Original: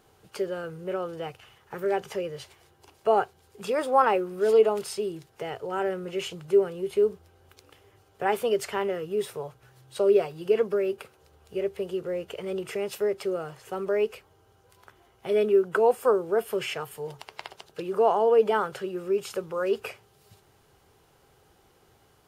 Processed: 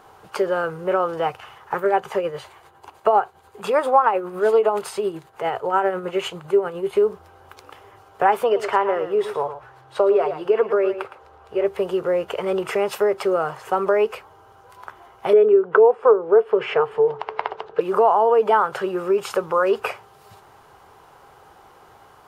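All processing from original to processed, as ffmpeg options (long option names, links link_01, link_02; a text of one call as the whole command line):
ffmpeg -i in.wav -filter_complex "[0:a]asettb=1/sr,asplit=3[link_01][link_02][link_03];[link_01]atrim=end=1.774[link_04];[link_02]atrim=start=1.77:end=6.95,asetpts=PTS-STARTPTS,afade=type=in:duration=0.004:curve=qsin,afade=type=out:start_time=5.176:duration=0.004:curve=qsin,equalizer=frequency=5400:width=7:gain=-7.5,tremolo=f=10:d=0.5[link_05];[link_03]atrim=start=6.946[link_06];[link_04][link_05]acrossfade=duration=0.004:curve1=hsin:curve2=qsin[link_07];[link_07][link_06]acrossfade=duration=0.004:curve1=qsin:curve2=hsin,asettb=1/sr,asplit=3[link_08][link_09][link_10];[link_08]atrim=end=8.444[link_11];[link_09]atrim=start=8.44:end=11.65,asetpts=PTS-STARTPTS,afade=type=in:duration=0.004:curve=qsin,afade=type=out:start_time=3.206:duration=0.004:curve=qsin,lowpass=frequency=2700:poles=1,equalizer=frequency=180:width_type=o:width=0.66:gain=-9.5,aecho=1:1:113:0.251,atrim=end_sample=141561[link_12];[link_10]atrim=start=11.646[link_13];[link_11][link_12]acrossfade=duration=0.004:curve1=hsin:curve2=qsin[link_14];[link_14][link_13]acrossfade=duration=0.004:curve1=qsin:curve2=hsin,asettb=1/sr,asplit=3[link_15][link_16][link_17];[link_15]atrim=end=15.334[link_18];[link_16]atrim=start=15.33:end=17.81,asetpts=PTS-STARTPTS,afade=type=in:duration=0.004:curve=qsin,afade=type=out:start_time=2.476:duration=0.004:curve=qsin,lowpass=2700,equalizer=frequency=440:width=4.7:gain=14.5[link_19];[link_17]atrim=start=17.806[link_20];[link_18][link_19]acrossfade=duration=0.004:curve1=hsin:curve2=qsin[link_21];[link_21][link_20]acrossfade=duration=0.004:curve1=qsin:curve2=hsin,equalizer=frequency=1000:width=0.76:gain=14.5,acompressor=threshold=-19dB:ratio=3,volume=4dB" out.wav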